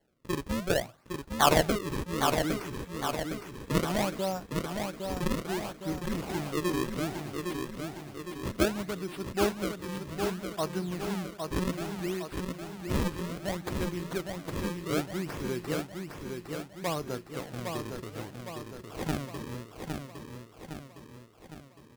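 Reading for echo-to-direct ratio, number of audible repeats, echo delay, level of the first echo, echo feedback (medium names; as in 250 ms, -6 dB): -3.5 dB, 6, 810 ms, -5.0 dB, 54%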